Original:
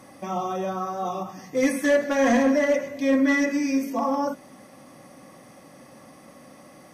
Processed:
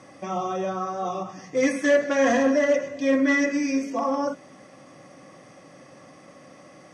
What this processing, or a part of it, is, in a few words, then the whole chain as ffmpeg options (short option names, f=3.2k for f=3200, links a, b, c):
car door speaker: -filter_complex "[0:a]asettb=1/sr,asplit=3[a][b][c];[a]atrim=end=2.264[d];[b]atrim=start=2.26:end=3.07,asetpts=PTS-STARTPTS,afade=t=in:d=0.004:c=qsin,afade=t=out:st=0.806:d=0.004:c=qsin,bandreject=f=2.2k:w=7.3[e];[c]atrim=start=3.066[f];[d][e]acrossfade=d=0.004:c1=hsin:c2=qsin[g];[g][f]acrossfade=d=0.004:c1=qsin:c2=hsin,highpass=86,equalizer=f=230:t=q:w=4:g=-7,equalizer=f=880:t=q:w=4:g=-5,equalizer=f=4.1k:t=q:w=4:g=-4,lowpass=f=7.6k:w=0.5412,lowpass=f=7.6k:w=1.3066,volume=1.5dB"